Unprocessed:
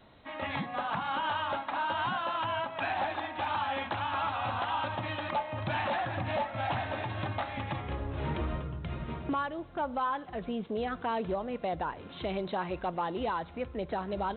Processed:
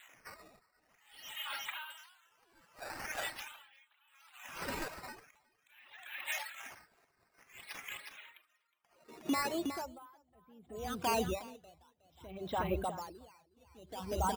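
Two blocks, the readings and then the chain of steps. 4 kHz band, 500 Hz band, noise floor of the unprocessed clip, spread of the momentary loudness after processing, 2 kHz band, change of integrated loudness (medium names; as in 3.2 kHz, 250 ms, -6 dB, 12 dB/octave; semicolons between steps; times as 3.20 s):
-5.0 dB, -8.0 dB, -48 dBFS, 22 LU, -7.5 dB, -6.0 dB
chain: spectral replace 0.44–1.43 s, 890–2300 Hz before; de-hum 99.14 Hz, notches 9; reverb removal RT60 2 s; dynamic bell 1.8 kHz, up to -4 dB, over -48 dBFS, Q 1.1; in parallel at -1 dB: peak limiter -31.5 dBFS, peak gain reduction 7.5 dB; on the sum: high-pass sweep 2.1 kHz -> 71 Hz, 8.54–9.66 s; decimation with a swept rate 8×, swing 160% 0.46 Hz; on a send: feedback delay 364 ms, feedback 26%, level -7.5 dB; on the sum: logarithmic tremolo 0.63 Hz, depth 33 dB; trim -2 dB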